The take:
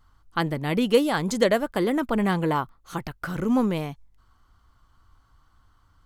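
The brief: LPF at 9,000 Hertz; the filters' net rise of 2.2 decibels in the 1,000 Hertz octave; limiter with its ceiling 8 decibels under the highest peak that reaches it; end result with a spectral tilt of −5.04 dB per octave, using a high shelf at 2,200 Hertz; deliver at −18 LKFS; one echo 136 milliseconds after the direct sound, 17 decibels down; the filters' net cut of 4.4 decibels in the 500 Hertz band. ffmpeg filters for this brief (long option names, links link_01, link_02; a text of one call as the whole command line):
ffmpeg -i in.wav -af "lowpass=9000,equalizer=frequency=500:width_type=o:gain=-6.5,equalizer=frequency=1000:width_type=o:gain=3.5,highshelf=frequency=2200:gain=6,alimiter=limit=-15.5dB:level=0:latency=1,aecho=1:1:136:0.141,volume=9.5dB" out.wav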